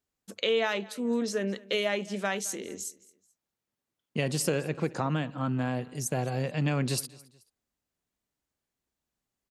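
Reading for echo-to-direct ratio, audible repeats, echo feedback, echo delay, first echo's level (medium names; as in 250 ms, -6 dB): -21.5 dB, 2, 35%, 216 ms, -22.0 dB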